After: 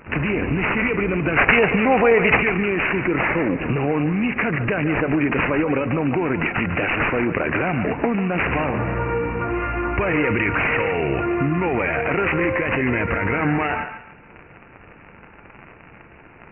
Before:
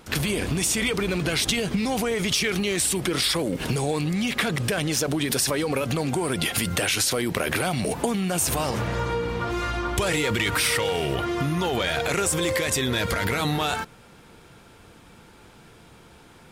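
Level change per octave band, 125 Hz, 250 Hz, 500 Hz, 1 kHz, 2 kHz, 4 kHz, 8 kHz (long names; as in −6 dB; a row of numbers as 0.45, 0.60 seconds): +3.0 dB, +5.5 dB, +5.5 dB, +6.0 dB, +7.5 dB, −10.5 dB, below −40 dB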